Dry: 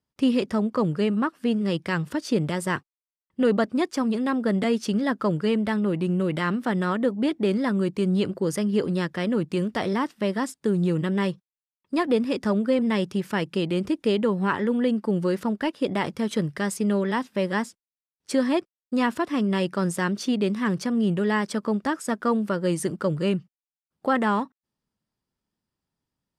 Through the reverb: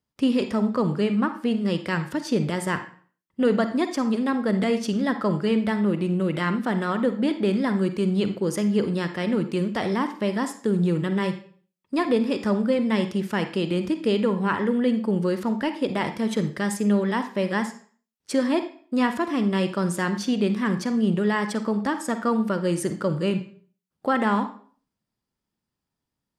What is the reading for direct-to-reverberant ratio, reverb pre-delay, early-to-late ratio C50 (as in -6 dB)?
8.0 dB, 39 ms, 9.5 dB